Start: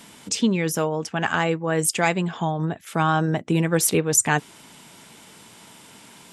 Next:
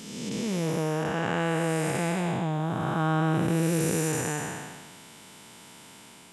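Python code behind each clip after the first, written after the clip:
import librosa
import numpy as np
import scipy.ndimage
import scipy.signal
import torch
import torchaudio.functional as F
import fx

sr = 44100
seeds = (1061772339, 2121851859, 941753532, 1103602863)

y = fx.spec_blur(x, sr, span_ms=542.0)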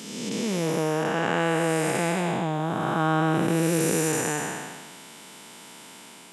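y = scipy.signal.sosfilt(scipy.signal.butter(2, 190.0, 'highpass', fs=sr, output='sos'), x)
y = y * librosa.db_to_amplitude(4.0)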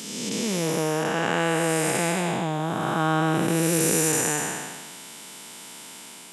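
y = fx.high_shelf(x, sr, hz=3600.0, db=7.0)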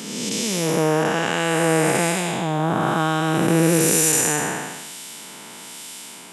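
y = fx.harmonic_tremolo(x, sr, hz=1.1, depth_pct=50, crossover_hz=2400.0)
y = y * librosa.db_to_amplitude(6.5)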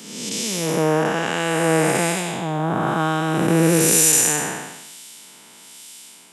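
y = fx.band_widen(x, sr, depth_pct=40)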